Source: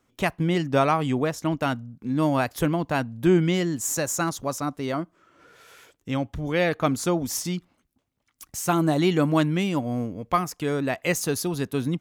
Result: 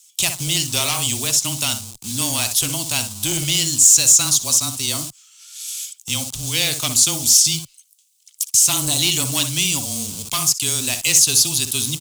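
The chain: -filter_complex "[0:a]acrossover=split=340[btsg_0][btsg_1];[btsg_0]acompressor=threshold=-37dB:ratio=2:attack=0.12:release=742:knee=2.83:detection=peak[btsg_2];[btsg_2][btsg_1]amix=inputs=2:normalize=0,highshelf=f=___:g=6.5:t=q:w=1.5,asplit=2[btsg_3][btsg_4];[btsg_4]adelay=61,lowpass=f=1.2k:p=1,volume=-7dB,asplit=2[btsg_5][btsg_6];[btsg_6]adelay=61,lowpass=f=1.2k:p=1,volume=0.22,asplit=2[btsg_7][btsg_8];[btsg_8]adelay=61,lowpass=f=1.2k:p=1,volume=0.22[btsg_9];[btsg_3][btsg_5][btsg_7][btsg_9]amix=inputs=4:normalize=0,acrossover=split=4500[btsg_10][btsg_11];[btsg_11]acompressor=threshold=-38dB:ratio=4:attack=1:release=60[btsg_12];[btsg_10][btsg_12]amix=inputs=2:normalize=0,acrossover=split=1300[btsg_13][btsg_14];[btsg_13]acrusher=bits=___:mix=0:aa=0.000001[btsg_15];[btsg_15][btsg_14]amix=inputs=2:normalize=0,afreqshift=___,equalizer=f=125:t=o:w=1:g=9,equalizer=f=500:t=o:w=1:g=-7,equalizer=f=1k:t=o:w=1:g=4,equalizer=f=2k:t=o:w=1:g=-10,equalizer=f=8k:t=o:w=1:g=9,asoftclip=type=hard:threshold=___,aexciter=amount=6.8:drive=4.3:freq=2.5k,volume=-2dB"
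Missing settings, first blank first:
1.5k, 6, -19, -20.5dB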